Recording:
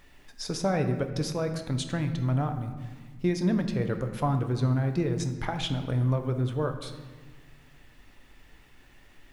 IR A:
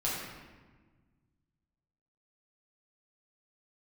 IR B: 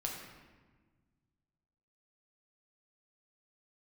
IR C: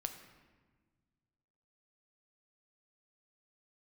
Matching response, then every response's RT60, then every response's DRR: C; 1.4 s, 1.4 s, 1.4 s; -7.5 dB, -1.0 dB, 6.0 dB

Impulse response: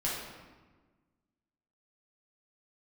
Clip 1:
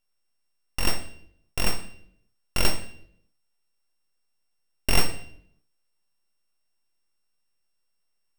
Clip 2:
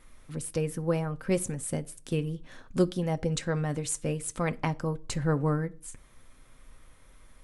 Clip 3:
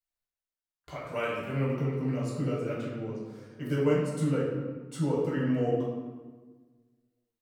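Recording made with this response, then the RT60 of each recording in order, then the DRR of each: 3; 0.65 s, no single decay rate, 1.4 s; 6.0 dB, 9.0 dB, -6.0 dB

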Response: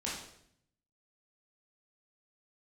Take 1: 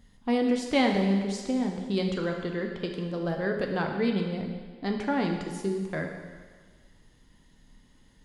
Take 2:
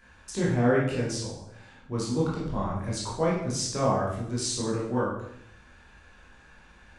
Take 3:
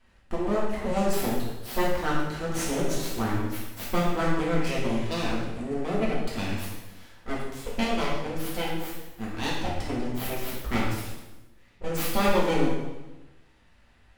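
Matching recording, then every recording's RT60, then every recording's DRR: 2; 1.6 s, 0.70 s, 1.1 s; 2.0 dB, -6.5 dB, -6.0 dB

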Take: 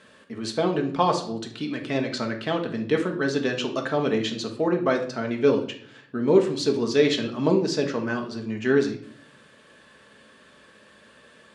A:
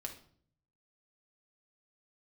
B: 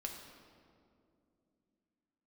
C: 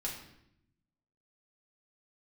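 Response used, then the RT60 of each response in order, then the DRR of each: A; 0.55 s, 2.5 s, 0.80 s; 2.5 dB, 1.0 dB, -4.0 dB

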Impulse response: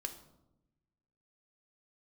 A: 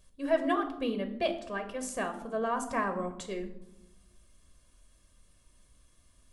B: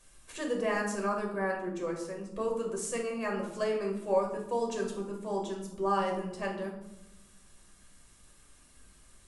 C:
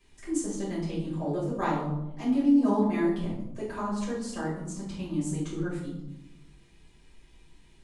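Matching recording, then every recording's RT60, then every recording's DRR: A; 0.90 s, 0.90 s, 0.90 s; 6.5 dB, -0.5 dB, -8.5 dB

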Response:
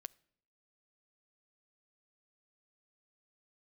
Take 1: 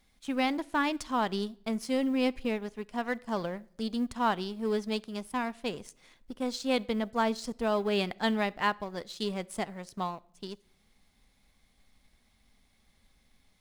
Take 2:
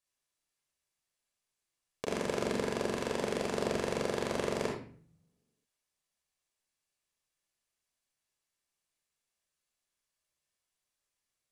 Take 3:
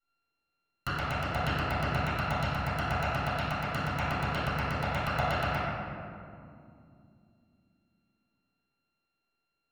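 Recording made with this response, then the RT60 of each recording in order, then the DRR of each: 1; 0.65 s, 0.45 s, 2.5 s; 18.5 dB, -1.0 dB, -14.5 dB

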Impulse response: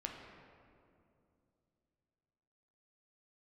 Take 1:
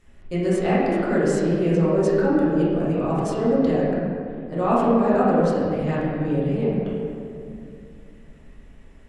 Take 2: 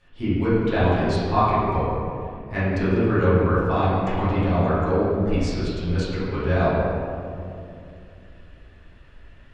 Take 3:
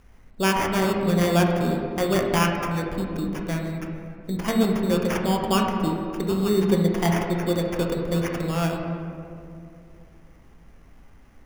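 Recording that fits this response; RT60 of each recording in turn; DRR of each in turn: 3; 2.6 s, 2.6 s, 2.6 s; -9.5 dB, -14.0 dB, 0.5 dB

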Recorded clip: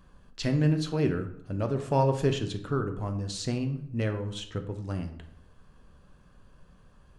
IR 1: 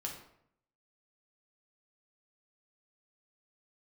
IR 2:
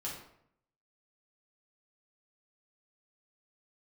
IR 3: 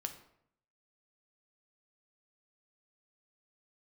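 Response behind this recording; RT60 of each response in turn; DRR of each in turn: 3; 0.70 s, 0.70 s, 0.70 s; -1.0 dB, -5.5 dB, 6.0 dB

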